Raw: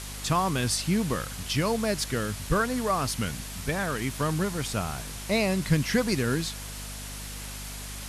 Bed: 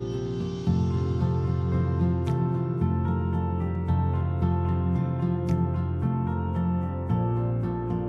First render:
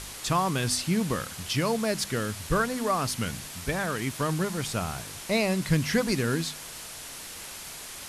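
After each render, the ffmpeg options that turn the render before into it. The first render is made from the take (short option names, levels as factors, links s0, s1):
-af "bandreject=f=50:t=h:w=4,bandreject=f=100:t=h:w=4,bandreject=f=150:t=h:w=4,bandreject=f=200:t=h:w=4,bandreject=f=250:t=h:w=4"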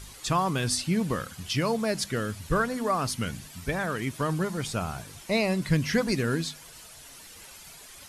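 -af "afftdn=nr=10:nf=-41"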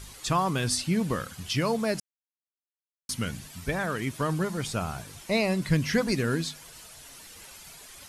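-filter_complex "[0:a]asplit=3[s0][s1][s2];[s0]atrim=end=2,asetpts=PTS-STARTPTS,afade=t=out:st=1.996:d=0.004:c=hsin[s3];[s1]atrim=start=2:end=3.09,asetpts=PTS-STARTPTS,volume=0[s4];[s2]atrim=start=3.09,asetpts=PTS-STARTPTS,afade=t=in:d=0.004:c=hsin[s5];[s3][s4][s5]concat=n=3:v=0:a=1"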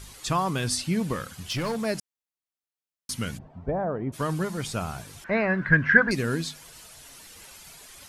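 -filter_complex "[0:a]asettb=1/sr,asplit=3[s0][s1][s2];[s0]atrim=end=1.134[s3];[s1]atrim=start=1.13:end=1.85,asetpts=PTS-STARTPTS,afade=t=in:d=0.004:c=qsin,afade=t=out:st=0.716:d=0.004:c=qsin,volume=16.8,asoftclip=hard,volume=0.0596[s4];[s2]atrim=start=1.846[s5];[s3][s4]acrossfade=d=0.004:c1=hsin:c2=qsin[s6];[s6][s5]acrossfade=d=0.004:c1=qsin:c2=hsin,asplit=3[s7][s8][s9];[s7]afade=t=out:st=3.37:d=0.02[s10];[s8]lowpass=f=710:t=q:w=2.2,afade=t=in:st=3.37:d=0.02,afade=t=out:st=4.12:d=0.02[s11];[s9]afade=t=in:st=4.12:d=0.02[s12];[s10][s11][s12]amix=inputs=3:normalize=0,asettb=1/sr,asplit=3[s13][s14][s15];[s13]atrim=end=5.244[s16];[s14]atrim=start=5.24:end=6.11,asetpts=PTS-STARTPTS,afade=t=in:d=0.004:c=qsin,afade=t=out:st=0.866:d=0.004:c=qsin,lowpass=f=1600:t=q:w=12[s17];[s15]atrim=start=6.106[s18];[s16][s17]acrossfade=d=0.004:c1=hsin:c2=qsin[s19];[s19][s18]acrossfade=d=0.004:c1=qsin:c2=hsin"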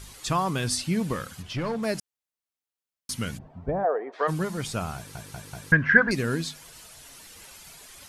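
-filter_complex "[0:a]asplit=3[s0][s1][s2];[s0]afade=t=out:st=1.41:d=0.02[s3];[s1]aemphasis=mode=reproduction:type=75kf,afade=t=in:st=1.41:d=0.02,afade=t=out:st=1.82:d=0.02[s4];[s2]afade=t=in:st=1.82:d=0.02[s5];[s3][s4][s5]amix=inputs=3:normalize=0,asplit=3[s6][s7][s8];[s6]afade=t=out:st=3.83:d=0.02[s9];[s7]highpass=f=400:w=0.5412,highpass=f=400:w=1.3066,equalizer=f=450:t=q:w=4:g=8,equalizer=f=740:t=q:w=4:g=9,equalizer=f=1200:t=q:w=4:g=3,equalizer=f=1800:t=q:w=4:g=9,equalizer=f=2900:t=q:w=4:g=-5,lowpass=f=4300:w=0.5412,lowpass=f=4300:w=1.3066,afade=t=in:st=3.83:d=0.02,afade=t=out:st=4.27:d=0.02[s10];[s8]afade=t=in:st=4.27:d=0.02[s11];[s9][s10][s11]amix=inputs=3:normalize=0,asplit=5[s12][s13][s14][s15][s16];[s12]atrim=end=5.152[s17];[s13]atrim=start=4.958:end=5.152[s18];[s14]atrim=start=4.958:end=5.152[s19];[s15]atrim=start=4.958:end=5.152[s20];[s16]atrim=start=5.718[s21];[s17][s18]acrossfade=d=0.004:c1=hsin:c2=hsin[s22];[s22][s19]acrossfade=d=0.004:c1=hsin:c2=hsin[s23];[s23][s20]acrossfade=d=0.004:c1=hsin:c2=hsin[s24];[s24][s21]acrossfade=d=0.004:c1=hsin:c2=hsin"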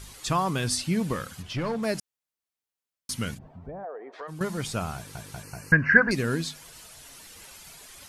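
-filter_complex "[0:a]asettb=1/sr,asplit=3[s0][s1][s2];[s0]atrim=end=3.344[s3];[s1]atrim=start=3.34:end=4.41,asetpts=PTS-STARTPTS,afade=t=in:d=0.004:c=qsin,afade=t=out:st=1.066:d=0.004:c=qsin,acompressor=threshold=0.00891:ratio=2.5:attack=3.2:release=140:knee=1:detection=peak[s4];[s2]atrim=start=4.406[s5];[s3][s4]acrossfade=d=0.004:c1=hsin:c2=qsin[s6];[s6][s5]acrossfade=d=0.004:c1=qsin:c2=hsin,asettb=1/sr,asplit=3[s7][s8][s9];[s7]atrim=end=5.434[s10];[s8]atrim=start=5.43:end=6.09,asetpts=PTS-STARTPTS,afade=t=in:d=0.004:c=qsin,afade=t=out:st=0.656:d=0.004:c=qsin,asuperstop=centerf=3500:order=20:qfactor=2.9[s11];[s9]atrim=start=6.086[s12];[s10][s11]acrossfade=d=0.004:c1=hsin:c2=qsin[s13];[s13][s12]acrossfade=d=0.004:c1=qsin:c2=hsin"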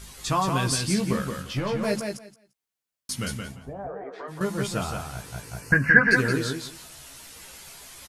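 -filter_complex "[0:a]asplit=2[s0][s1];[s1]adelay=15,volume=0.562[s2];[s0][s2]amix=inputs=2:normalize=0,asplit=2[s3][s4];[s4]aecho=0:1:173|346|519:0.562|0.0956|0.0163[s5];[s3][s5]amix=inputs=2:normalize=0"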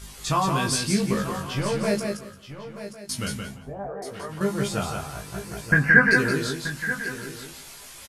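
-filter_complex "[0:a]asplit=2[s0][s1];[s1]adelay=20,volume=0.562[s2];[s0][s2]amix=inputs=2:normalize=0,aecho=1:1:930:0.237"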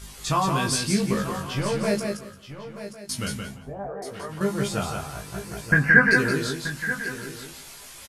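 -af anull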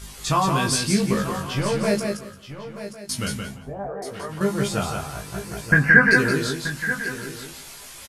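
-af "volume=1.33,alimiter=limit=0.891:level=0:latency=1"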